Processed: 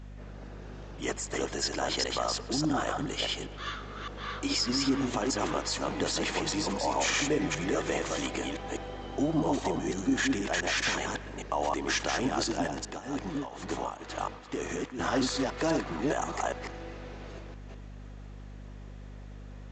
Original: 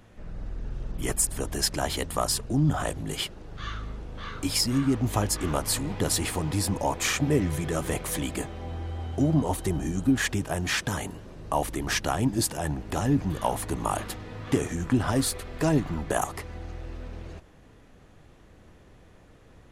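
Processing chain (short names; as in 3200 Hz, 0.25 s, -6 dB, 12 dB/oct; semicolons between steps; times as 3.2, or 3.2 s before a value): reverse delay 0.204 s, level -2 dB; HPF 300 Hz 12 dB/oct; limiter -18 dBFS, peak gain reduction 8.5 dB; hum 50 Hz, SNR 13 dB; 12.67–14.99 tremolo triangle 2.1 Hz, depth 85%; narrowing echo 0.113 s, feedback 70%, band-pass 1700 Hz, level -16.5 dB; A-law 128 kbps 16000 Hz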